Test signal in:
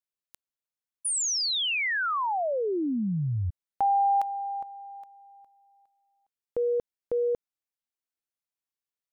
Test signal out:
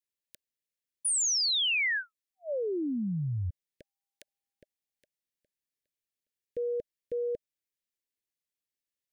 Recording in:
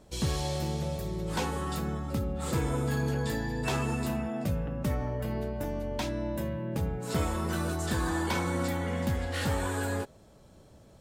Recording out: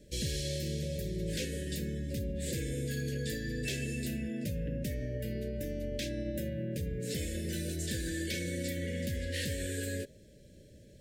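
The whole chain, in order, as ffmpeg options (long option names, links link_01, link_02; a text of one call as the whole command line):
ffmpeg -i in.wav -filter_complex "[0:a]acrossover=split=2500[link_01][link_02];[link_01]alimiter=level_in=4dB:limit=-24dB:level=0:latency=1:release=62,volume=-4dB[link_03];[link_03][link_02]amix=inputs=2:normalize=0,asuperstop=centerf=990:order=20:qfactor=1" out.wav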